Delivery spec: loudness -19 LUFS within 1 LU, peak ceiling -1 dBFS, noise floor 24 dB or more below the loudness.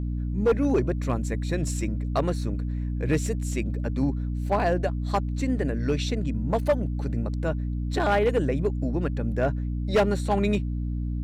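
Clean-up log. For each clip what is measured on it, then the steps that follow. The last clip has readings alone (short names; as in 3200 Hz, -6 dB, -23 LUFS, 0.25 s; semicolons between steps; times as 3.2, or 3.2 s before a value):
clipped 0.8%; flat tops at -15.5 dBFS; hum 60 Hz; harmonics up to 300 Hz; hum level -26 dBFS; loudness -26.5 LUFS; peak -15.5 dBFS; loudness target -19.0 LUFS
-> clip repair -15.5 dBFS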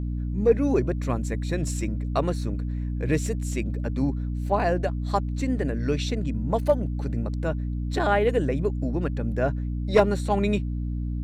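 clipped 0.0%; hum 60 Hz; harmonics up to 300 Hz; hum level -26 dBFS
-> de-hum 60 Hz, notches 5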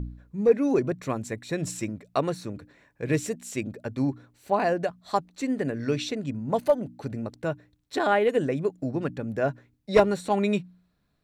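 hum none; loudness -27.5 LUFS; peak -6.5 dBFS; loudness target -19.0 LUFS
-> gain +8.5 dB; limiter -1 dBFS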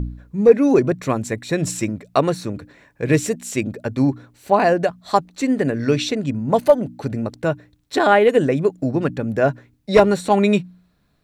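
loudness -19.0 LUFS; peak -1.0 dBFS; noise floor -63 dBFS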